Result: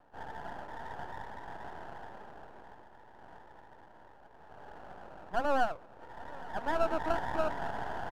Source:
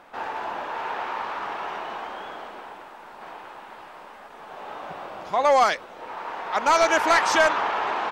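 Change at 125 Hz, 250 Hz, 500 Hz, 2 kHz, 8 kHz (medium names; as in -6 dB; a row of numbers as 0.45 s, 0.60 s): no reading, -6.5 dB, -11.0 dB, -15.5 dB, under -20 dB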